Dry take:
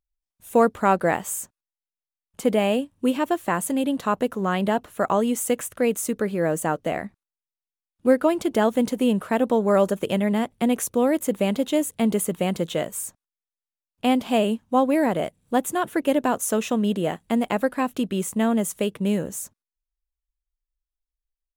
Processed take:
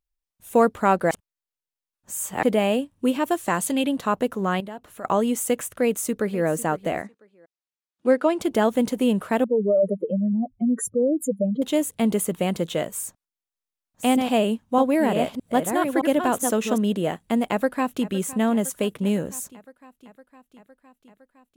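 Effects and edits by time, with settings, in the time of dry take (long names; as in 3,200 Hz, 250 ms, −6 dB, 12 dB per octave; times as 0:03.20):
0:01.11–0:02.43: reverse
0:03.23–0:03.87: parametric band 13,000 Hz → 2,500 Hz +8.5 dB 1.3 octaves
0:04.60–0:05.05: downward compressor 2 to 1, threshold −44 dBFS
0:05.83–0:06.45: delay throw 500 ms, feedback 25%, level −17 dB
0:07.02–0:08.40: band-pass filter 250–7,500 Hz
0:09.44–0:11.62: expanding power law on the bin magnitudes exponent 3.6
0:12.93–0:16.78: delay that plays each chunk backwards 617 ms, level −5.5 dB
0:17.50–0:18.11: delay throw 510 ms, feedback 75%, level −17.5 dB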